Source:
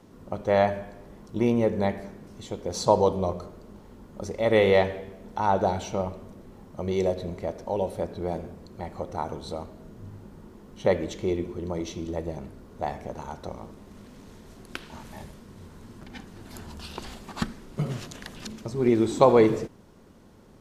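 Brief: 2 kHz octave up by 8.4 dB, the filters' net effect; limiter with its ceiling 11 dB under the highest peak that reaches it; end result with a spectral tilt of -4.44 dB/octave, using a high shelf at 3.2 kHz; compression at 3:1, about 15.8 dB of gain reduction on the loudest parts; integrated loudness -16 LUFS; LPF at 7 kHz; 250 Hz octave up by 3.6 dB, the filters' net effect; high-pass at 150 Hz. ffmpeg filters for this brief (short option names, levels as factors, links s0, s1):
-af "highpass=150,lowpass=7000,equalizer=f=250:t=o:g=5.5,equalizer=f=2000:t=o:g=6.5,highshelf=f=3200:g=9,acompressor=threshold=0.0224:ratio=3,volume=13.3,alimiter=limit=0.841:level=0:latency=1"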